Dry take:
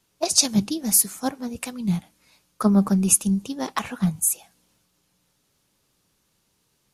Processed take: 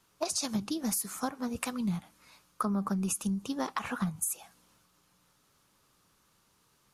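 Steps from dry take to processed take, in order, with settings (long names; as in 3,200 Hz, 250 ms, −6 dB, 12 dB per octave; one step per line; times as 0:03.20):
parametric band 1,200 Hz +8.5 dB 0.85 octaves
brickwall limiter −12 dBFS, peak gain reduction 10 dB
downward compressor 6 to 1, threshold −28 dBFS, peak gain reduction 11.5 dB
level −1 dB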